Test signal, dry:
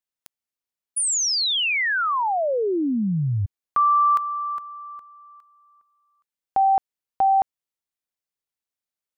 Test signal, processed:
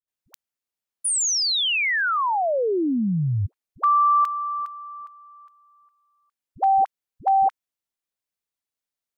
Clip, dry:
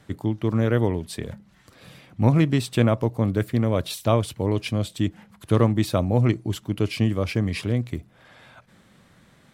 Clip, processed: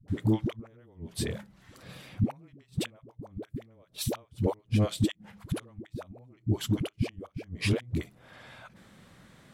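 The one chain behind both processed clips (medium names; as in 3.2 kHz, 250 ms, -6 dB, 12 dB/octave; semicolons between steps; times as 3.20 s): inverted gate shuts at -12 dBFS, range -35 dB; phase dispersion highs, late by 81 ms, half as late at 390 Hz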